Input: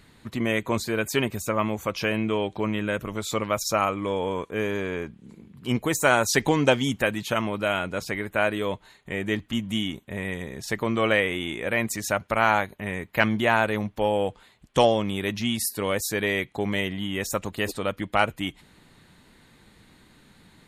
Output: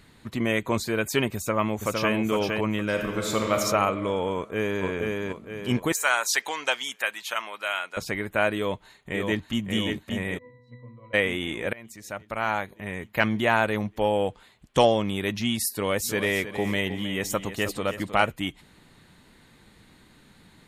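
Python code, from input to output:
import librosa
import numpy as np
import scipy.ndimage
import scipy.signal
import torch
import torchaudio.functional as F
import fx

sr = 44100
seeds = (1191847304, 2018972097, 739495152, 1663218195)

y = fx.echo_throw(x, sr, start_s=1.35, length_s=0.79, ms=460, feedback_pct=25, wet_db=-3.5)
y = fx.reverb_throw(y, sr, start_s=2.89, length_s=0.65, rt60_s=2.4, drr_db=1.5)
y = fx.echo_throw(y, sr, start_s=4.34, length_s=0.51, ms=470, feedback_pct=45, wet_db=-2.5)
y = fx.highpass(y, sr, hz=1000.0, slope=12, at=(5.92, 7.97))
y = fx.echo_throw(y, sr, start_s=8.56, length_s=1.08, ms=580, feedback_pct=60, wet_db=-5.0)
y = fx.octave_resonator(y, sr, note='B', decay_s=0.69, at=(10.37, 11.13), fade=0.02)
y = fx.echo_feedback(y, sr, ms=314, feedback_pct=31, wet_db=-11.5, at=(15.98, 18.3), fade=0.02)
y = fx.edit(y, sr, fx.fade_in_from(start_s=11.73, length_s=2.41, curve='qsin', floor_db=-24.0), tone=tone)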